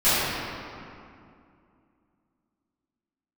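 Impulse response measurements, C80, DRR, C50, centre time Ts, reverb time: -3.0 dB, -18.0 dB, -5.0 dB, 0.18 s, 2.4 s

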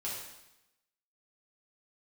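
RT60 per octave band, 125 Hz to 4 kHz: 0.95, 0.95, 0.90, 0.90, 0.90, 0.90 s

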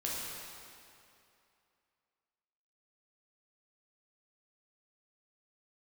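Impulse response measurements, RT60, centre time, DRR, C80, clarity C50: 2.6 s, 0.155 s, -5.5 dB, -0.5 dB, -2.0 dB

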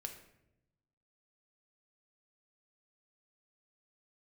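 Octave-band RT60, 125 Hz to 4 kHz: 1.5, 1.2, 1.0, 0.70, 0.70, 0.55 s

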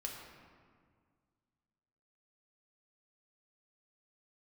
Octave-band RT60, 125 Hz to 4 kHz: 2.5, 2.3, 1.9, 1.9, 1.5, 1.1 s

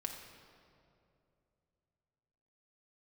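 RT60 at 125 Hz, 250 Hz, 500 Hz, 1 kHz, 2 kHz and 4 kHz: 3.7, 3.1, 3.0, 2.4, 1.9, 1.6 s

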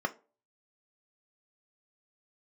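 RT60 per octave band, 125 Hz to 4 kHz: 0.35, 0.35, 0.40, 0.30, 0.25, 0.20 s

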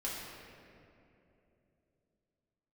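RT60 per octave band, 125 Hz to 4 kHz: 3.8, 3.7, 3.5, 2.5, 2.3, 1.5 s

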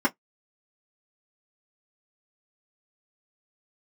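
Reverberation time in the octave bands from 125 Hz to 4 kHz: 0.15, 0.15, 0.10, 0.10, 0.10, 0.10 s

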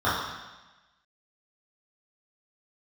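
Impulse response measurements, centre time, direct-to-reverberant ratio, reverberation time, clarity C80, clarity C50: 76 ms, -11.5 dB, 1.1 s, 3.5 dB, 0.5 dB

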